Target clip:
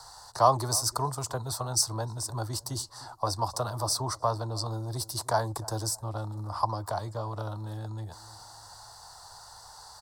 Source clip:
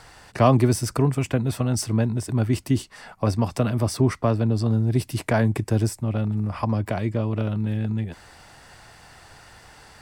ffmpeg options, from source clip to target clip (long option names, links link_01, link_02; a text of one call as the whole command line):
ffmpeg -i in.wav -filter_complex "[0:a]firequalizer=gain_entry='entry(110,0);entry(230,-19);entry(920,3);entry(2400,-27);entry(4100,9);entry(6000,12)':delay=0.05:min_phase=1,acrossover=split=170|510|2400[link_01][link_02][link_03][link_04];[link_01]asoftclip=type=tanh:threshold=-27.5dB[link_05];[link_05][link_02][link_03][link_04]amix=inputs=4:normalize=0,bass=frequency=250:gain=-10,treble=frequency=4000:gain=-11,asplit=2[link_06][link_07];[link_07]adelay=303,lowpass=frequency=990:poles=1,volume=-18.5dB,asplit=2[link_08][link_09];[link_09]adelay=303,lowpass=frequency=990:poles=1,volume=0.41,asplit=2[link_10][link_11];[link_11]adelay=303,lowpass=frequency=990:poles=1,volume=0.41[link_12];[link_06][link_08][link_10][link_12]amix=inputs=4:normalize=0,volume=2dB" out.wav